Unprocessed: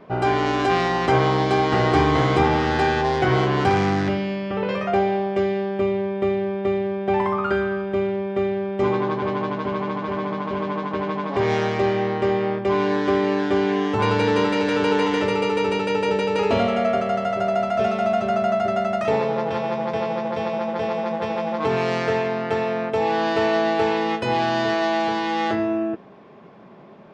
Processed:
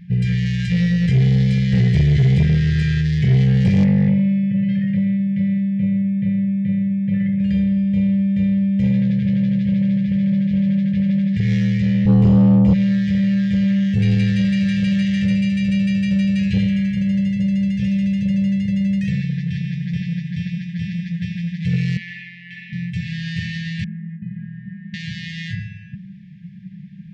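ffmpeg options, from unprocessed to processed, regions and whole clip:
-filter_complex "[0:a]asettb=1/sr,asplit=3[a][b][c];[a]atrim=end=3.844[d];[b]atrim=start=3.84:end=7.4,asetpts=PTS-STARTPTS,afade=t=in:d=0.004:c=qsin,afade=t=out:st=3.556:d=0.004:c=qsin,highpass=110,lowpass=2.1k,aecho=1:1:7:0.72,atrim=end_sample=156996[e];[c]atrim=start=7.396[f];[d][e]acrossfade=d=0.004:c1=hsin:c2=qsin[g];[g][f]acrossfade=d=0.004:c1=qsin:c2=hsin,asettb=1/sr,asplit=3[h][i][j];[h]atrim=end=12.054[k];[i]atrim=start=12.05:end=12.73,asetpts=PTS-STARTPTS,afade=t=in:d=0.004:c=qsin,afade=t=out:st=0.676:d=0.004:c=qsin,bass=f=250:g=11,treble=f=4k:g=1,acrossover=split=140|3000[l][m][n];[m]acompressor=threshold=-26dB:ratio=2:attack=3.2:release=140:knee=2.83:detection=peak[o];[l][o][n]amix=inputs=3:normalize=0,asplit=2[p][q];[q]adelay=25,volume=-3dB[r];[p][r]amix=inputs=2:normalize=0,atrim=end_sample=29988[s];[j]atrim=start=12.726[t];[k][s]acrossfade=d=0.004:c1=hsin:c2=qsin[u];[u][t]acrossfade=d=0.004:c1=qsin:c2=hsin,asettb=1/sr,asplit=3[v][w][x];[v]atrim=end=21.974[y];[w]atrim=start=21.97:end=22.73,asetpts=PTS-STARTPTS,afade=t=in:d=0.004:c=qsin,afade=t=out:st=0.756:d=0.004:c=qsin,highpass=580,lowpass=2.8k,asplit=2[z][aa];[aa]adelay=29,volume=-11.5dB[ab];[z][ab]amix=inputs=2:normalize=0,atrim=end_sample=33516[ac];[x]atrim=start=22.726[ad];[y][ac]acrossfade=d=0.004:c1=hsin:c2=qsin[ae];[ae][ad]acrossfade=d=0.004:c1=qsin:c2=hsin,asettb=1/sr,asplit=3[af][ag][ah];[af]atrim=end=23.844[ai];[ag]atrim=start=23.84:end=24.94,asetpts=PTS-STARTPTS,afade=t=in:d=0.004:c=qsin,afade=t=out:st=1.096:d=0.004:c=qsin,lowpass=f=1.1k:w=0.5412,lowpass=f=1.1k:w=1.3066,lowshelf=f=160:t=q:w=3:g=-11.5[aj];[ah]atrim=start=24.936[ak];[ai][aj]acrossfade=d=0.004:c1=hsin:c2=qsin[al];[al][ak]acrossfade=d=0.004:c1=qsin:c2=hsin,afftfilt=real='re*(1-between(b*sr/4096,210,1600))':imag='im*(1-between(b*sr/4096,210,1600))':win_size=4096:overlap=0.75,lowshelf=f=250:t=q:w=3:g=10.5,acontrast=71,volume=-7.5dB"

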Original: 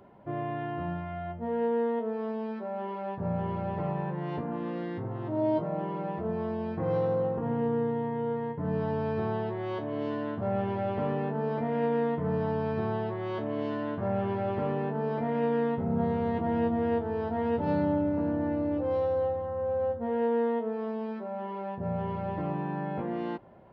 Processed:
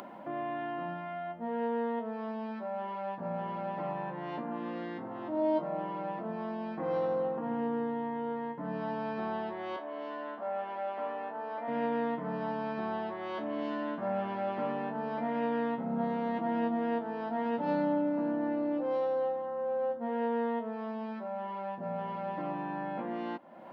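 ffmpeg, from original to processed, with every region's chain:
-filter_complex "[0:a]asettb=1/sr,asplit=3[a][b][c];[a]atrim=end=9.764[d];[b]atrim=start=9.76:end=11.68,asetpts=PTS-STARTPTS,afade=t=in:d=0.004:c=qsin,afade=t=out:st=1.916:d=0.004:c=qsin,highpass=520,highshelf=f=2.8k:g=-8.5[e];[c]atrim=start=11.676[f];[d][e]acrossfade=d=0.004:c1=hsin:c2=qsin[g];[g][f]acrossfade=d=0.004:c1=qsin:c2=hsin,highpass=f=220:w=0.5412,highpass=f=220:w=1.3066,equalizer=f=410:w=4.5:g=-14,acompressor=mode=upward:threshold=-36dB:ratio=2.5"

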